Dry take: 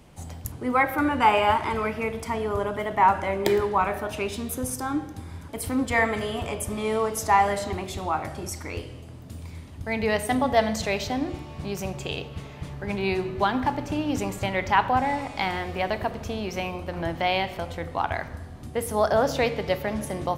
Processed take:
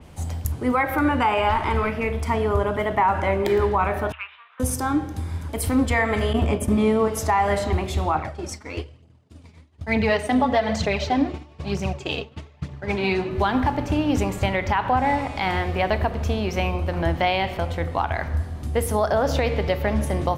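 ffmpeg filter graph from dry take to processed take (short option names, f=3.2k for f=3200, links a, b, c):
-filter_complex "[0:a]asettb=1/sr,asplit=3[a][b][c];[a]atrim=end=1.494[d];[b]atrim=start=1.49:end=2.28,asetpts=PTS-STARTPTS,afade=t=in:d=0.004:c=qsin,afade=t=out:st=0.786:d=0.004:c=qsin,aeval=exprs='(tanh(6.31*val(0)+0.45)-tanh(0.45))/6.31':c=same,asplit=2[e][f];[f]adelay=43,volume=-13.5dB[g];[e][g]amix=inputs=2:normalize=0,atrim=end_sample=34839[h];[c]atrim=start=2.276[i];[d][h]acrossfade=d=0.004:c1=hsin:c2=qsin[j];[j][i]acrossfade=d=0.004:c1=qsin:c2=hsin,asettb=1/sr,asplit=3[k][l][m];[k]atrim=end=4.124[n];[l]atrim=start=4.12:end=4.6,asetpts=PTS-STARTPTS,afade=t=in:d=0.004:c=qsin,afade=t=out:st=0.476:d=0.004:c=qsin,adynamicsmooth=sensitivity=1.5:basefreq=1.5k,asuperpass=centerf=1900:order=8:qfactor=0.83[o];[m]atrim=start=4.596[p];[n][o]acrossfade=d=0.004:c1=hsin:c2=qsin[q];[q][p]acrossfade=d=0.004:c1=qsin:c2=hsin,asettb=1/sr,asplit=3[r][s][t];[r]atrim=end=6.334[u];[s]atrim=start=6.33:end=7.08,asetpts=PTS-STARTPTS,afade=t=in:d=0.004:c=qsin,afade=t=out:st=0.746:d=0.004:c=qsin,agate=range=-33dB:threshold=-29dB:ratio=3:release=100:detection=peak,equalizer=f=240:w=1:g=10.5[v];[t]atrim=start=7.076[w];[u][v]acrossfade=d=0.004:c1=hsin:c2=qsin[x];[x][w]acrossfade=d=0.004:c1=qsin:c2=hsin,asettb=1/sr,asplit=3[y][z][aa];[y]atrim=end=8.154[ab];[z]atrim=start=8.15:end=13.31,asetpts=PTS-STARTPTS,afade=t=in:d=0.004:c=qsin,afade=t=out:st=5.156:d=0.004:c=qsin,agate=range=-33dB:threshold=-30dB:ratio=3:release=100:detection=peak,highpass=110,lowpass=6.9k,aphaser=in_gain=1:out_gain=1:delay=4.9:decay=0.47:speed=1.1:type=triangular[ac];[aa]atrim=start=13.306[ad];[ab][ac]acrossfade=d=0.004:c1=hsin:c2=qsin[ae];[ae][ad]acrossfade=d=0.004:c1=qsin:c2=hsin,equalizer=f=75:t=o:w=0.23:g=14.5,alimiter=limit=-16dB:level=0:latency=1:release=113,adynamicequalizer=threshold=0.00501:dfrequency=4100:dqfactor=0.7:tfrequency=4100:tqfactor=0.7:attack=5:release=100:ratio=0.375:range=3:mode=cutabove:tftype=highshelf,volume=5dB"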